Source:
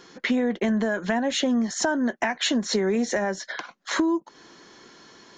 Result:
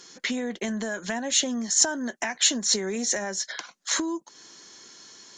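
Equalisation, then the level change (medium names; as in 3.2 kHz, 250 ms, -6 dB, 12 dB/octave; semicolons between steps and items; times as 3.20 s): treble shelf 2.5 kHz +8.5 dB; peaking EQ 7.7 kHz +11 dB 1.3 oct; -7.0 dB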